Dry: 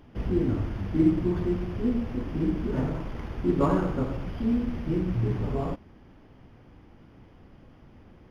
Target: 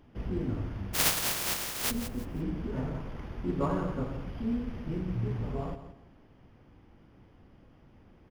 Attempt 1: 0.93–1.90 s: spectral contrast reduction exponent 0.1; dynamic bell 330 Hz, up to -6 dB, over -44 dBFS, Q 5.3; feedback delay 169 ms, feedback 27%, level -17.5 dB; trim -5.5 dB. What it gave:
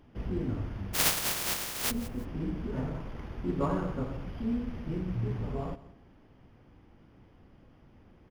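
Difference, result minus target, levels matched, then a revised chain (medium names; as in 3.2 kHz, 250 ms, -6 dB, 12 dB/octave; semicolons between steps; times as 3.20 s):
echo-to-direct -6 dB
0.93–1.90 s: spectral contrast reduction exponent 0.1; dynamic bell 330 Hz, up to -6 dB, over -44 dBFS, Q 5.3; feedback delay 169 ms, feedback 27%, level -11.5 dB; trim -5.5 dB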